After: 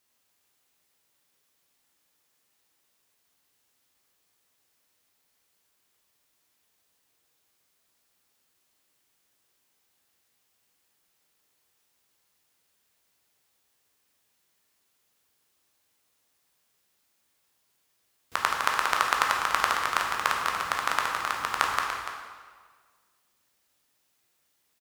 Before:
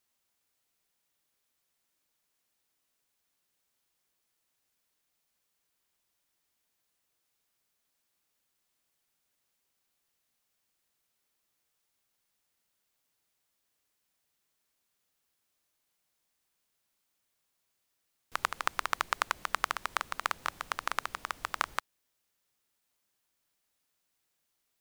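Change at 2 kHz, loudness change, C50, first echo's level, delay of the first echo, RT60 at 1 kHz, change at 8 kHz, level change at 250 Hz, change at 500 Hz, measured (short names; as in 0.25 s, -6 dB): +7.5 dB, +7.5 dB, 2.0 dB, -10.0 dB, 0.29 s, 1.6 s, +7.5 dB, +8.0 dB, +8.0 dB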